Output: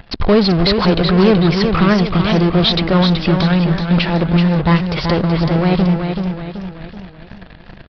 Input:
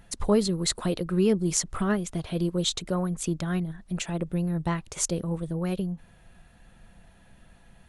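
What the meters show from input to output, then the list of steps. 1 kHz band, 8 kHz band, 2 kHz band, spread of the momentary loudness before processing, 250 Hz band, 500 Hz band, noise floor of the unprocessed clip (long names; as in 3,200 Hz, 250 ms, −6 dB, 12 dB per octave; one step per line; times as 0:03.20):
+17.0 dB, below −15 dB, +17.5 dB, 8 LU, +14.0 dB, +12.5 dB, −56 dBFS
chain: in parallel at −9 dB: fuzz pedal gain 40 dB, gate −49 dBFS
on the sum: downsampling to 11,025 Hz
feedback echo with a swinging delay time 379 ms, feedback 45%, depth 67 cents, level −6 dB
level +6 dB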